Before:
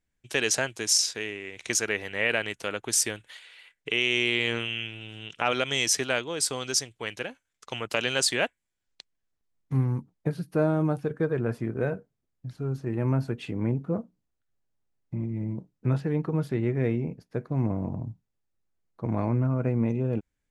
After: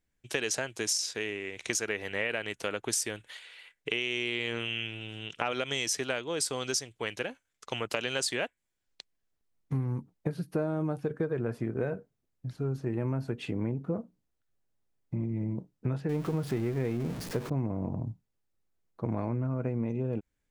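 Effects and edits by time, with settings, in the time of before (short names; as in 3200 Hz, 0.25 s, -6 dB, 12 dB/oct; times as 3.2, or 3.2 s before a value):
16.09–17.5 zero-crossing step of -34 dBFS
whole clip: bell 440 Hz +2 dB 1.4 oct; compressor, threshold -27 dBFS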